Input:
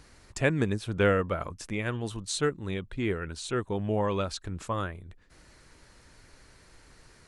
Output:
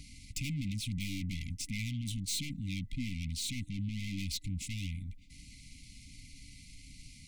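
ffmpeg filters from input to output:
-af "aeval=exprs='(tanh(89.1*val(0)+0.4)-tanh(0.4))/89.1':c=same,acontrast=66,afftfilt=real='re*(1-between(b*sr/4096,300,2000))':imag='im*(1-between(b*sr/4096,300,2000))':win_size=4096:overlap=0.75"

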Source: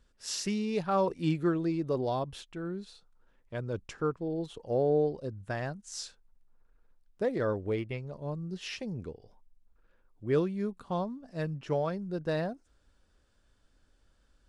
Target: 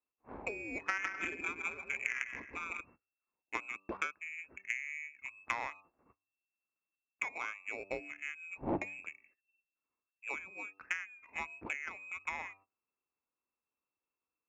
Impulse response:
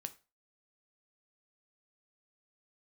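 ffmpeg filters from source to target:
-filter_complex "[0:a]lowpass=f=2.3k:t=q:w=0.5098,lowpass=f=2.3k:t=q:w=0.6013,lowpass=f=2.3k:t=q:w=0.9,lowpass=f=2.3k:t=q:w=2.563,afreqshift=-2700,bandreject=f=97.31:t=h:w=4,bandreject=f=194.62:t=h:w=4,bandreject=f=291.93:t=h:w=4,bandreject=f=389.24:t=h:w=4,bandreject=f=486.55:t=h:w=4,bandreject=f=583.86:t=h:w=4,bandreject=f=681.17:t=h:w=4,bandreject=f=778.48:t=h:w=4,bandreject=f=875.79:t=h:w=4,bandreject=f=973.1:t=h:w=4,bandreject=f=1.07041k:t=h:w=4,bandreject=f=1.16772k:t=h:w=4,bandreject=f=1.26503k:t=h:w=4,acompressor=threshold=-37dB:ratio=16,aemphasis=mode=reproduction:type=bsi,agate=range=-21dB:threshold=-58dB:ratio=16:detection=peak,highpass=62,asettb=1/sr,asplit=3[a][b][c];[a]atrim=end=0.814[d];[b]atrim=start=0.81:end=2.81,asetpts=PTS-STARTPTS,afade=t=in:d=0.004:c=qsin,afade=t=out:st=1.996:d=0.004:c=qsin,aecho=1:1:160|256|313.6|348.2|368.9:0.631|0.398|0.251|0.158|0.1,atrim=end_sample=88200[e];[c]atrim=start=2.806[f];[d][e]acrossfade=d=0.004:c1=hsin:c2=qsin[g];[g][f]acrossfade=d=0.004:c1=qsin:c2=hsin,adynamicsmooth=sensitivity=3:basefreq=620,lowshelf=f=200:t=q:w=1.5:g=-8.5,volume=14.5dB"

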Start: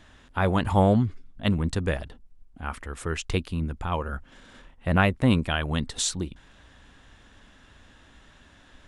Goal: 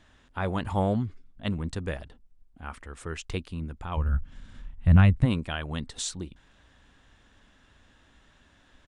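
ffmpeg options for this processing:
-filter_complex "[0:a]aresample=22050,aresample=44100,asplit=3[a][b][c];[a]afade=t=out:st=3.96:d=0.02[d];[b]asubboost=boost=9:cutoff=150,afade=t=in:st=3.96:d=0.02,afade=t=out:st=5.24:d=0.02[e];[c]afade=t=in:st=5.24:d=0.02[f];[d][e][f]amix=inputs=3:normalize=0,volume=-6dB"

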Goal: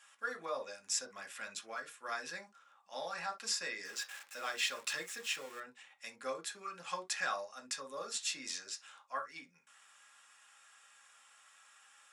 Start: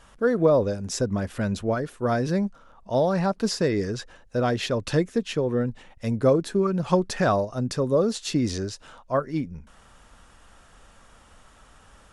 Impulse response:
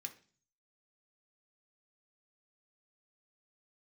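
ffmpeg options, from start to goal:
-filter_complex "[0:a]asettb=1/sr,asplit=3[a][b][c];[a]atrim=end=3.854[d];[b]atrim=start=3.85:end=5.6,asetpts=PTS-STARTPTS,afade=t=in:d=0.004:c=qsin,afade=t=out:st=1.746:d=0.004:c=qsin,aeval=exprs='val(0)+0.5*0.0141*sgn(val(0))':c=same[e];[c]atrim=start=5.596[f];[d][e]acrossfade=d=0.004:c1=hsin:c2=qsin[g];[g][f]acrossfade=d=0.004:c1=qsin:c2=hsin,highpass=1.1k[h];[1:a]atrim=start_sample=2205,atrim=end_sample=3087[i];[h][i]afir=irnorm=-1:irlink=0,volume=-1dB"

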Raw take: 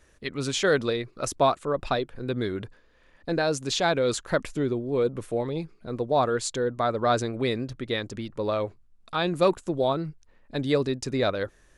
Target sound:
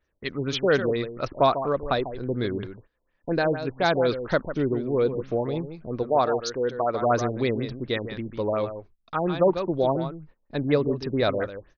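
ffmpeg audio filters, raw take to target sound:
-filter_complex "[0:a]asettb=1/sr,asplit=3[a][b][c];[a]atrim=end=6.034[d];[b]atrim=start=6.03:end=7.02,asetpts=PTS-STARTPTS,afade=t=in:d=0.004:c=qsin,afade=t=out:st=0.986:d=0.004:c=qsin,bass=f=250:g=-7,treble=f=4k:g=3[e];[c]atrim=start=7.016[f];[d][e]acrossfade=d=0.004:c1=hsin:c2=qsin[g];[g][f]acrossfade=d=0.004:c1=qsin:c2=hsin,aecho=1:1:146:0.316,agate=range=-17dB:threshold=-50dB:ratio=16:detection=peak,asettb=1/sr,asplit=3[h][i][j];[h]atrim=end=9.864[k];[i]atrim=start=9.86:end=11.01,asetpts=PTS-STARTPTS,afade=t=in:d=0.004:c=qsin,afade=t=out:st=1.146:d=0.004:c=qsin,highshelf=f=5.5k:g=-9[l];[j]atrim=start=11.006[m];[k][l]acrossfade=d=0.004:c1=hsin:c2=qsin[n];[n][m]acrossfade=d=0.004:c1=qsin:c2=hsin,afftfilt=real='re*lt(b*sr/1024,940*pow(6800/940,0.5+0.5*sin(2*PI*4.2*pts/sr)))':imag='im*lt(b*sr/1024,940*pow(6800/940,0.5+0.5*sin(2*PI*4.2*pts/sr)))':win_size=1024:overlap=0.75,volume=1.5dB"

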